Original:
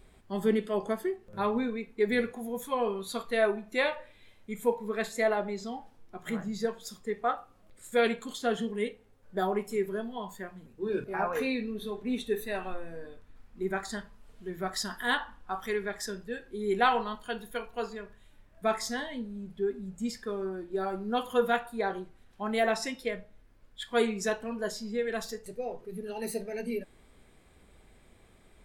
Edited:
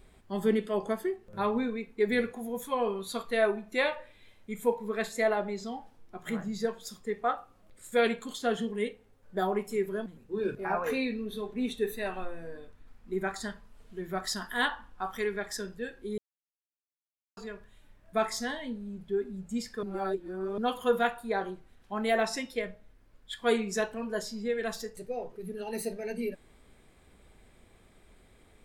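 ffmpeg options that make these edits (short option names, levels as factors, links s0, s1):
-filter_complex "[0:a]asplit=6[s0][s1][s2][s3][s4][s5];[s0]atrim=end=10.062[s6];[s1]atrim=start=10.548:end=16.67,asetpts=PTS-STARTPTS,afade=t=out:st=6.118:d=0.004:c=hsin[s7];[s2]atrim=start=16.67:end=17.86,asetpts=PTS-STARTPTS,volume=0[s8];[s3]atrim=start=17.86:end=20.322,asetpts=PTS-STARTPTS,afade=t=in:d=0.004:c=hsin[s9];[s4]atrim=start=20.318:end=21.072,asetpts=PTS-STARTPTS,areverse[s10];[s5]atrim=start=21.068[s11];[s7][s8][s9]concat=n=3:v=0:a=1[s12];[s6][s12]acrossfade=d=0.004:c1=hsin:c2=hsin[s13];[s13][s10]acrossfade=d=0.004:c1=hsin:c2=hsin[s14];[s14][s11]acrossfade=d=0.004:c1=hsin:c2=hsin"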